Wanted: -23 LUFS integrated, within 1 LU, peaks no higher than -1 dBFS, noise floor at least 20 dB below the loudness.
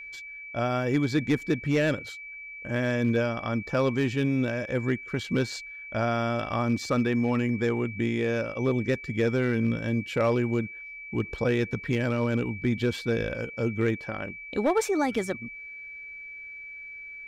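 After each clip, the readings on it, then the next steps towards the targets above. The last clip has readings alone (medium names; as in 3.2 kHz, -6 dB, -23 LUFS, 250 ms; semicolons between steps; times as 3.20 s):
clipped samples 0.4%; clipping level -16.5 dBFS; steady tone 2.3 kHz; tone level -39 dBFS; loudness -27.5 LUFS; peak level -16.5 dBFS; loudness target -23.0 LUFS
-> clip repair -16.5 dBFS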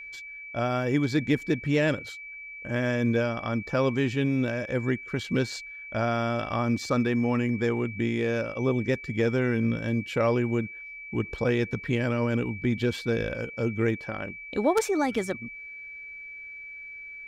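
clipped samples 0.0%; steady tone 2.3 kHz; tone level -39 dBFS
-> band-stop 2.3 kHz, Q 30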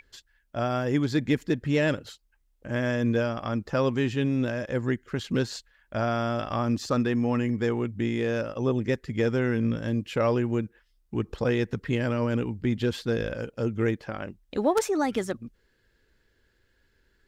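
steady tone not found; loudness -27.5 LUFS; peak level -8.0 dBFS; loudness target -23.0 LUFS
-> trim +4.5 dB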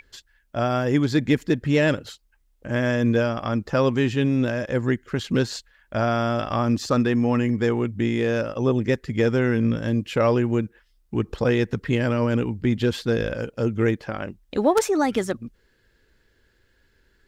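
loudness -23.0 LUFS; peak level -3.5 dBFS; noise floor -64 dBFS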